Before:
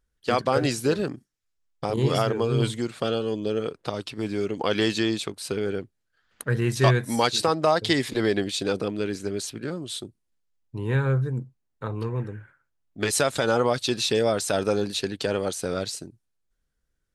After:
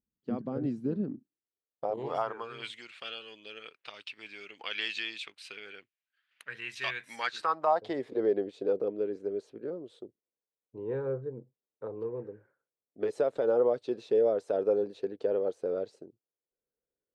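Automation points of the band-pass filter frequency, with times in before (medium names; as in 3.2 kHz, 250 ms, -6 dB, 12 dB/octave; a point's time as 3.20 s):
band-pass filter, Q 2.8
1.04 s 220 Hz
2.27 s 980 Hz
2.69 s 2.5 kHz
7.05 s 2.5 kHz
8.06 s 470 Hz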